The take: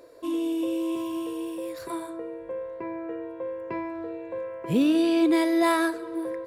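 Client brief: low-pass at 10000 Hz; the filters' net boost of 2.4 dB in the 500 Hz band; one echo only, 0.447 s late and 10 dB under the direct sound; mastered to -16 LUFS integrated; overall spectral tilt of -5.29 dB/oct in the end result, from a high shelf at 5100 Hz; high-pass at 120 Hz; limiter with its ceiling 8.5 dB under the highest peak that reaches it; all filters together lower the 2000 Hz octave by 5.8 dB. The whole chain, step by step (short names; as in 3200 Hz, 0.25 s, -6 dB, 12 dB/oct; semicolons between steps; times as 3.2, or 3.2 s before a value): HPF 120 Hz; LPF 10000 Hz; bell 500 Hz +4 dB; bell 2000 Hz -8 dB; high shelf 5100 Hz +4 dB; limiter -20 dBFS; echo 0.447 s -10 dB; gain +13 dB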